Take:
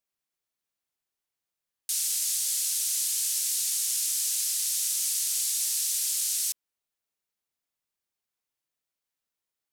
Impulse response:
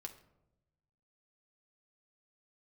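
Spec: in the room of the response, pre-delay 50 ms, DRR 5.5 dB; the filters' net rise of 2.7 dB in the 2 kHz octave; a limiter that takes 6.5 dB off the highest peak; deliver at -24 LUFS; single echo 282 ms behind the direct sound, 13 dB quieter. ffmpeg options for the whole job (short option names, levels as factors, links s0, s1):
-filter_complex "[0:a]equalizer=f=2000:t=o:g=3.5,alimiter=limit=0.0944:level=0:latency=1,aecho=1:1:282:0.224,asplit=2[s0][s1];[1:a]atrim=start_sample=2205,adelay=50[s2];[s1][s2]afir=irnorm=-1:irlink=0,volume=0.891[s3];[s0][s3]amix=inputs=2:normalize=0,volume=1.33"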